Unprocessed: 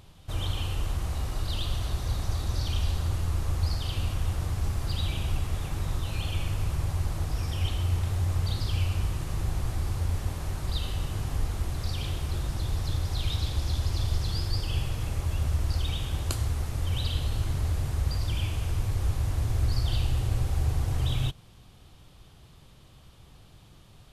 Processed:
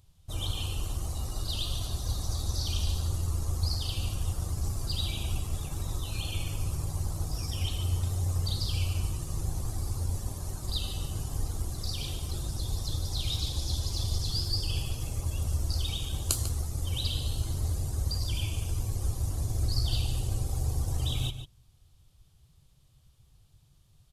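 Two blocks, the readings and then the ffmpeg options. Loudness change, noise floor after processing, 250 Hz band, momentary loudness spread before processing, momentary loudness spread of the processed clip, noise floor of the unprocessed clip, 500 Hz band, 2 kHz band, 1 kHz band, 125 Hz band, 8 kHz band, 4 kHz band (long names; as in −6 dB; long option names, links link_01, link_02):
−2.0 dB, −62 dBFS, −3.0 dB, 4 LU, 5 LU, −53 dBFS, −3.5 dB, −6.0 dB, −5.0 dB, −3.0 dB, +5.0 dB, +2.0 dB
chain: -filter_complex "[0:a]bass=frequency=250:gain=-1,treble=frequency=4000:gain=12,afftdn=noise_reduction=14:noise_floor=-41,asplit=2[link_01][link_02];[link_02]aeval=exprs='sgn(val(0))*max(abs(val(0))-0.0211,0)':channel_layout=same,volume=-11.5dB[link_03];[link_01][link_03]amix=inputs=2:normalize=0,asplit=2[link_04][link_05];[link_05]adelay=145.8,volume=-10dB,highshelf=frequency=4000:gain=-3.28[link_06];[link_04][link_06]amix=inputs=2:normalize=0,volume=-4dB"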